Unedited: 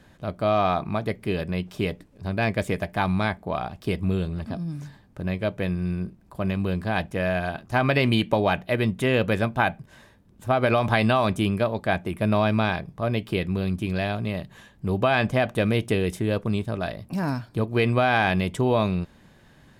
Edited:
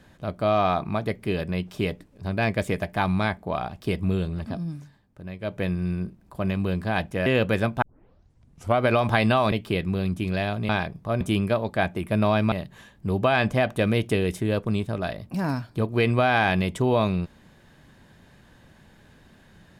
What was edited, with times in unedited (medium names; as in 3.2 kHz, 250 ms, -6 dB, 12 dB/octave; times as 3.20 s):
4.67–5.58 s: dip -9.5 dB, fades 0.19 s
7.26–9.05 s: delete
9.61 s: tape start 0.99 s
11.31–12.62 s: swap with 13.14–14.31 s